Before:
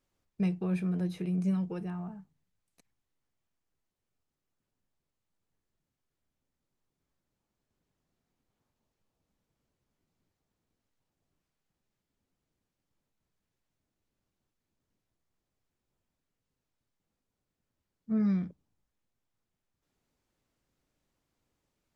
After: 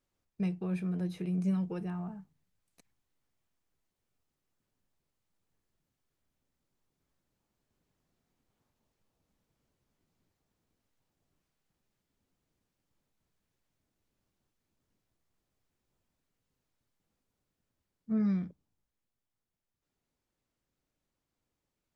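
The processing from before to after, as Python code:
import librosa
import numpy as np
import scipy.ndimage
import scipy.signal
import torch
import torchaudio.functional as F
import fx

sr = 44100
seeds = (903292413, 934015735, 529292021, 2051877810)

y = fx.rider(x, sr, range_db=4, speed_s=2.0)
y = y * 10.0 ** (-2.0 / 20.0)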